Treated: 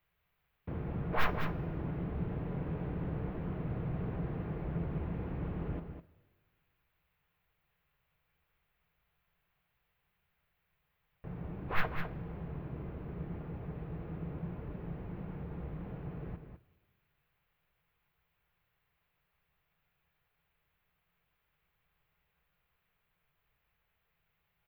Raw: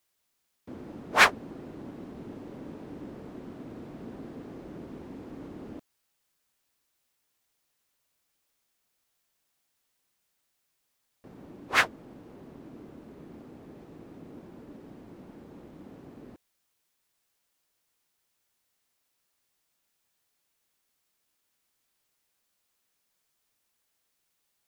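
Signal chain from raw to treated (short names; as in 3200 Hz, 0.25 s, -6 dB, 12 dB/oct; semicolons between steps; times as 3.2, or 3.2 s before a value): tracing distortion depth 0.39 ms; EQ curve 160 Hz 0 dB, 240 Hz -21 dB, 390 Hz -13 dB, 2500 Hz -8 dB, 4400 Hz -18 dB, 6500 Hz -30 dB, 14000 Hz +10 dB; in parallel at +3 dB: negative-ratio compressor -45 dBFS; on the sum: soft clip -17.5 dBFS, distortion -8 dB; air absorption 270 m; on a send: echo 0.203 s -8 dB; on the sum: two-slope reverb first 0.22 s, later 1.8 s, from -18 dB, DRR 10.5 dB; gain +1.5 dB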